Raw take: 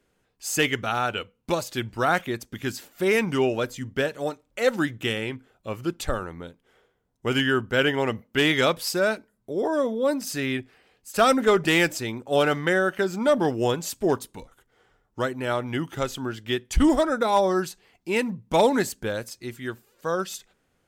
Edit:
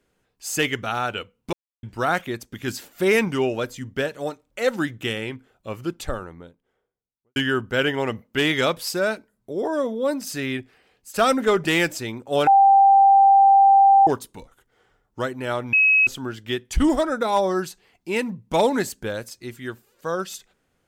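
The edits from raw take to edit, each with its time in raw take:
0:01.53–0:01.83: silence
0:02.68–0:03.28: clip gain +3 dB
0:05.77–0:07.36: fade out and dull
0:12.47–0:14.07: beep over 787 Hz −10 dBFS
0:15.73–0:16.07: beep over 2,560 Hz −13 dBFS

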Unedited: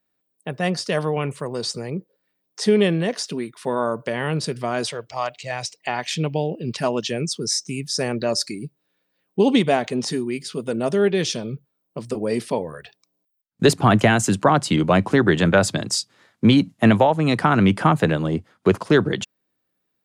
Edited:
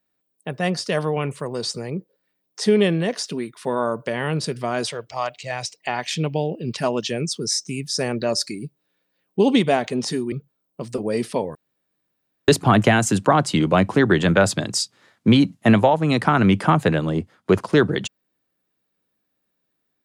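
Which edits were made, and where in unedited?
0:10.32–0:11.49: remove
0:12.72–0:13.65: fill with room tone

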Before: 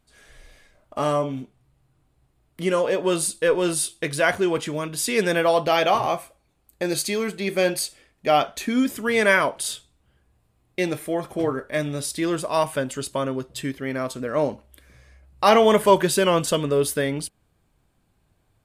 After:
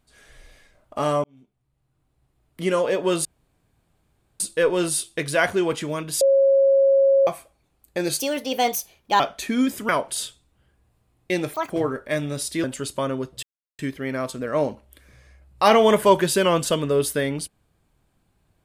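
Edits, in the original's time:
0:01.24–0:02.64: fade in
0:03.25: splice in room tone 1.15 s
0:05.06–0:06.12: beep over 546 Hz −13 dBFS
0:07.04–0:08.38: play speed 133%
0:09.07–0:09.37: remove
0:11.02–0:11.33: play speed 193%
0:12.27–0:12.81: remove
0:13.60: splice in silence 0.36 s

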